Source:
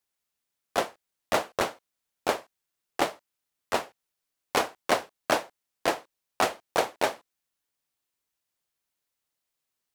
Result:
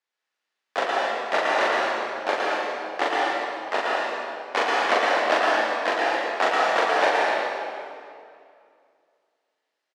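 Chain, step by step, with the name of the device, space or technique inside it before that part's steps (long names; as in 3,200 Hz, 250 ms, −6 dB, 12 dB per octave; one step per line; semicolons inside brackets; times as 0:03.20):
station announcement (band-pass filter 380–4,200 Hz; parametric band 1,800 Hz +5 dB 0.33 octaves; loudspeakers that aren't time-aligned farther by 14 metres −2 dB, 38 metres −6 dB; convolution reverb RT60 2.3 s, pre-delay 108 ms, DRR −3.5 dB)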